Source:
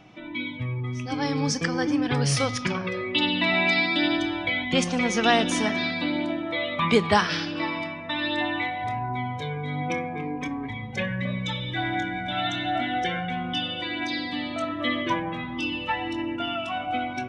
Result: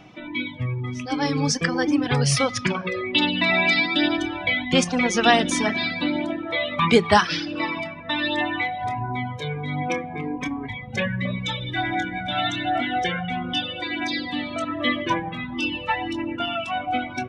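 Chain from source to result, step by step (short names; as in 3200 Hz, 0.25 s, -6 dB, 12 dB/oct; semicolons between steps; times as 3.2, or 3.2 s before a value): de-hum 109.4 Hz, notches 39; reverb removal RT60 0.79 s; gain +4.5 dB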